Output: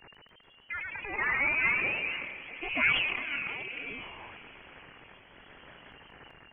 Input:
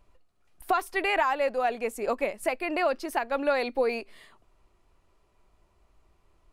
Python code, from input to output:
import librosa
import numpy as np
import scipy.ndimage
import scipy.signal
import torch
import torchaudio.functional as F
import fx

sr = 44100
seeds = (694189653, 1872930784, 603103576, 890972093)

y = x + 0.5 * 10.0 ** (-24.5 / 20.0) * np.diff(np.sign(x), prepend=np.sign(x[:1]))
y = fx.highpass(y, sr, hz=290.0, slope=12, at=(0.72, 2.16))
y = fx.freq_invert(y, sr, carrier_hz=2800)
y = fx.auto_swell(y, sr, attack_ms=404.0)
y = fx.echo_pitch(y, sr, ms=145, semitones=1, count=3, db_per_echo=-3.0)
y = fx.echo_diffused(y, sr, ms=505, feedback_pct=45, wet_db=-14.5)
y = fx.sustainer(y, sr, db_per_s=36.0)
y = y * librosa.db_to_amplitude(-3.5)